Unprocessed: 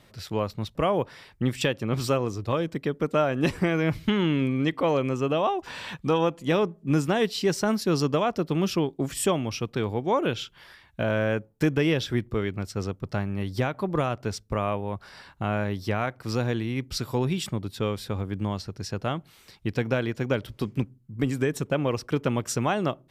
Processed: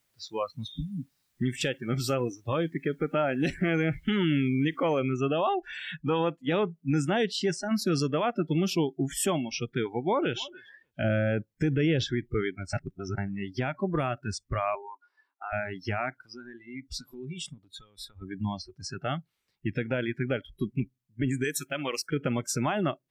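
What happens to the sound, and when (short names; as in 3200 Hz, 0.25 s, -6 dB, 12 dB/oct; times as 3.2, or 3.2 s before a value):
0.71–1.31 spectral repair 300–3700 Hz
4.99 noise floor step -50 dB -68 dB
7.3–7.71 fade out, to -8 dB
9.82–10.4 echo throw 0.29 s, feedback 20%, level -14 dB
11.04–12.04 low shelf 420 Hz +6.5 dB
12.73–13.18 reverse
14.75–15.53 rippled Chebyshev high-pass 270 Hz, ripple 9 dB
16.16–18.22 compressor 10:1, threshold -31 dBFS
21.44–22.08 tilt +3 dB/oct
whole clip: spectral noise reduction 26 dB; bell 2100 Hz +2 dB; limiter -18 dBFS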